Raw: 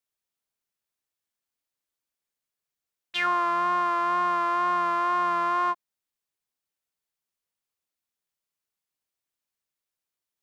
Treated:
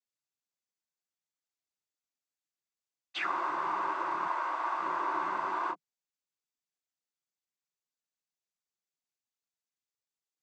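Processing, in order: 4.25–4.79 steep high-pass 390 Hz; noise vocoder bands 16; gain -7.5 dB

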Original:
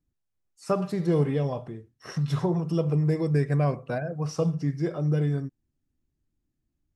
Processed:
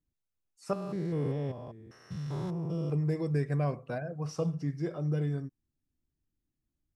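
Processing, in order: 0.73–2.9 stepped spectrum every 0.2 s; gain -6 dB

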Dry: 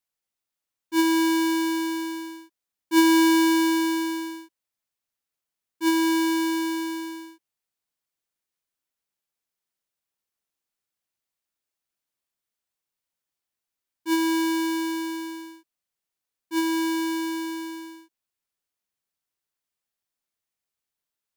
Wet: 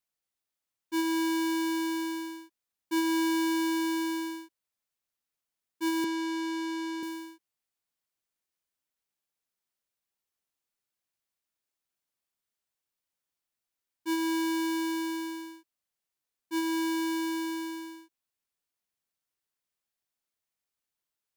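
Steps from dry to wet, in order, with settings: 6.04–7.03 three-band isolator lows -12 dB, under 180 Hz, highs -15 dB, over 7800 Hz; compressor 3:1, threshold -28 dBFS, peak gain reduction 9.5 dB; gain -2 dB

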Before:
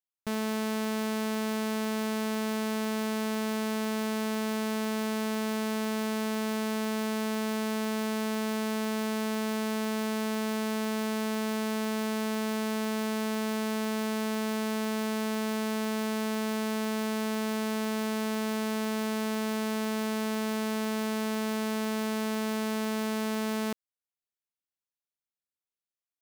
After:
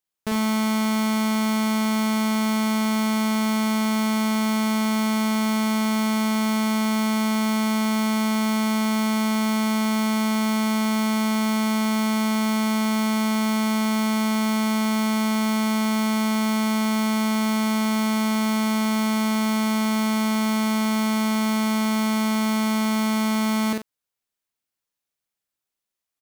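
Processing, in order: loudspeakers at several distances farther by 17 m -3 dB, 31 m -11 dB; gain +6.5 dB

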